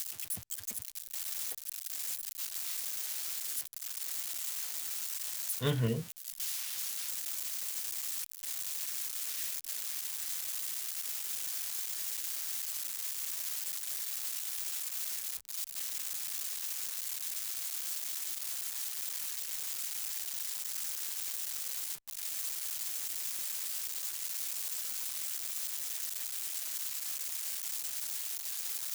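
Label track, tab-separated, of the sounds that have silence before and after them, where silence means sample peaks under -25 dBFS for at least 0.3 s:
5.640000	5.930000	sound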